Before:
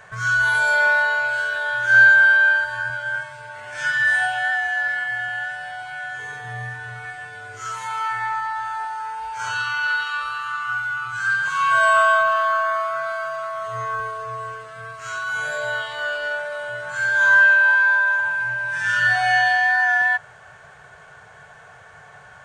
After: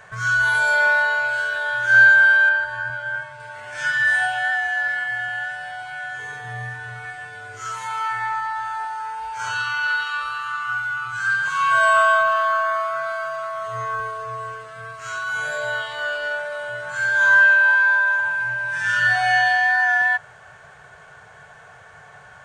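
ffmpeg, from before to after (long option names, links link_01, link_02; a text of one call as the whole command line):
ffmpeg -i in.wav -filter_complex "[0:a]asettb=1/sr,asplit=3[link_01][link_02][link_03];[link_01]atrim=end=2.494[link_04];[link_02]atrim=start=2.49:end=3.4,asetpts=PTS-STARTPTS,afade=type=in:duration=0.004:curve=qsin,afade=type=out:start_time=0.906:duration=0.004:curve=qsin,highshelf=frequency=3700:gain=-9[link_05];[link_03]atrim=start=3.396[link_06];[link_04][link_05]acrossfade=duration=0.004:curve1=hsin:curve2=qsin[link_07];[link_07][link_06]acrossfade=duration=0.004:curve1=qsin:curve2=hsin" out.wav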